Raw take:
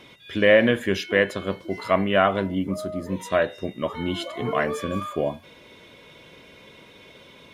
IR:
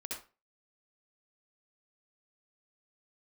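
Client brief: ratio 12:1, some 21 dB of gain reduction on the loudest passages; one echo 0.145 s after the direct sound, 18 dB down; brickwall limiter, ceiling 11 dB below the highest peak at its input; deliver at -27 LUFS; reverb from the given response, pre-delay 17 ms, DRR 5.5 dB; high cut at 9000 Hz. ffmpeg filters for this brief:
-filter_complex "[0:a]lowpass=9k,acompressor=threshold=-33dB:ratio=12,alimiter=level_in=6dB:limit=-24dB:level=0:latency=1,volume=-6dB,aecho=1:1:145:0.126,asplit=2[a][b];[1:a]atrim=start_sample=2205,adelay=17[c];[b][c]afir=irnorm=-1:irlink=0,volume=-5.5dB[d];[a][d]amix=inputs=2:normalize=0,volume=14dB"

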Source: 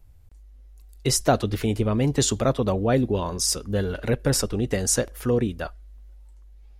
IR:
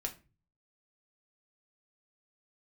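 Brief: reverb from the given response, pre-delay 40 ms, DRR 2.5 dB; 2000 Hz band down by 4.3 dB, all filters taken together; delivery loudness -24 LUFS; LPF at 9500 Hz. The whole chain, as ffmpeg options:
-filter_complex "[0:a]lowpass=9.5k,equalizer=f=2k:t=o:g=-6,asplit=2[a][b];[1:a]atrim=start_sample=2205,adelay=40[c];[b][c]afir=irnorm=-1:irlink=0,volume=-2.5dB[d];[a][d]amix=inputs=2:normalize=0,volume=-1.5dB"

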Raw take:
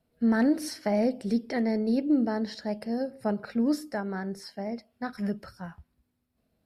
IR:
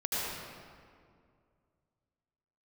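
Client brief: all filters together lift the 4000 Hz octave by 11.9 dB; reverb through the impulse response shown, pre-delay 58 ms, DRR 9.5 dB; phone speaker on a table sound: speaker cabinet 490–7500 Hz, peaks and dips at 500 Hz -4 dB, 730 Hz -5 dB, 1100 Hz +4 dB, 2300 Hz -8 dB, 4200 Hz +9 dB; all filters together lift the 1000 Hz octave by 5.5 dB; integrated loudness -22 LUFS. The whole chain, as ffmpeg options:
-filter_complex "[0:a]equalizer=f=1k:t=o:g=9,equalizer=f=4k:t=o:g=7.5,asplit=2[a][b];[1:a]atrim=start_sample=2205,adelay=58[c];[b][c]afir=irnorm=-1:irlink=0,volume=-17dB[d];[a][d]amix=inputs=2:normalize=0,highpass=f=490:w=0.5412,highpass=f=490:w=1.3066,equalizer=f=500:t=q:w=4:g=-4,equalizer=f=730:t=q:w=4:g=-5,equalizer=f=1.1k:t=q:w=4:g=4,equalizer=f=2.3k:t=q:w=4:g=-8,equalizer=f=4.2k:t=q:w=4:g=9,lowpass=f=7.5k:w=0.5412,lowpass=f=7.5k:w=1.3066,volume=10.5dB"

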